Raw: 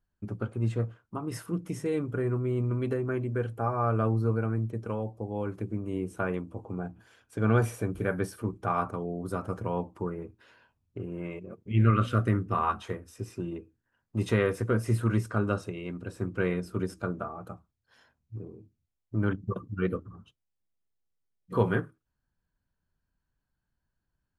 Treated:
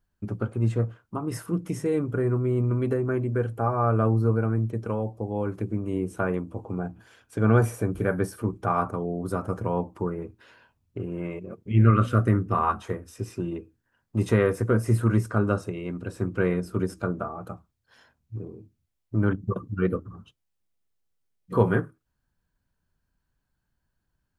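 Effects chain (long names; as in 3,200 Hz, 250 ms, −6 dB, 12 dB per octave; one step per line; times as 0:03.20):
dynamic equaliser 3,300 Hz, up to −7 dB, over −52 dBFS, Q 0.95
level +4.5 dB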